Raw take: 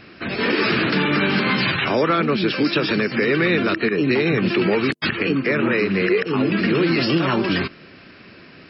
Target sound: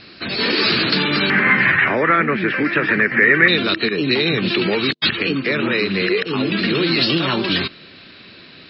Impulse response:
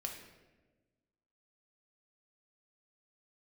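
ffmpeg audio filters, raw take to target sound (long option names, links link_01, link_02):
-af "asetnsamples=nb_out_samples=441:pad=0,asendcmd='1.3 lowpass f 1900;3.48 lowpass f 3900',lowpass=frequency=4300:width_type=q:width=5.7,volume=-1dB"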